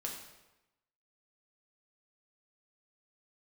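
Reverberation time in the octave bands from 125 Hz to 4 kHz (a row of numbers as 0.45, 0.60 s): 1.0, 0.95, 1.0, 1.0, 0.90, 0.80 s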